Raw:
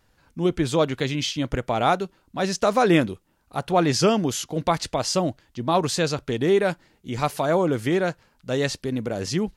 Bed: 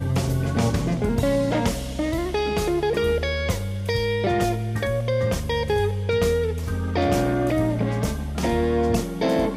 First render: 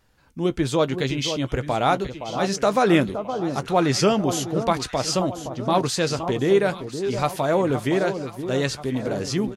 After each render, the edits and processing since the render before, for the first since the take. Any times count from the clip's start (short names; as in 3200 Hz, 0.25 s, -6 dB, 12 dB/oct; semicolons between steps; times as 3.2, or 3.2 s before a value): doubler 15 ms -13 dB; echo with dull and thin repeats by turns 0.518 s, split 1200 Hz, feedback 64%, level -8.5 dB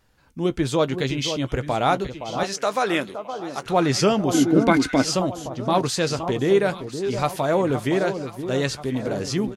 2.43–3.66 HPF 670 Hz 6 dB/oct; 4.34–5.04 small resonant body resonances 280/1500/2100 Hz, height 17 dB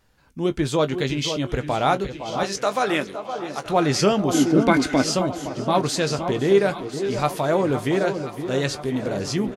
doubler 20 ms -13 dB; tape echo 0.507 s, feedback 84%, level -17 dB, low-pass 5400 Hz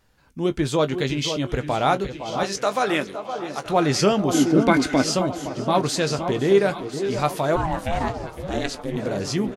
7.55–8.96 ring modulator 540 Hz -> 110 Hz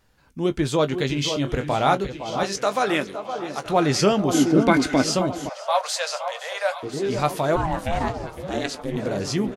1.13–1.95 doubler 28 ms -9.5 dB; 5.49–6.83 steep high-pass 520 Hz 96 dB/oct; 8.39–8.82 HPF 120 Hz 6 dB/oct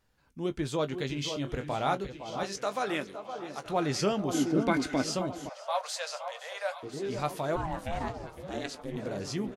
gain -9.5 dB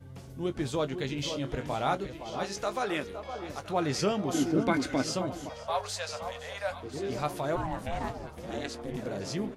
add bed -23.5 dB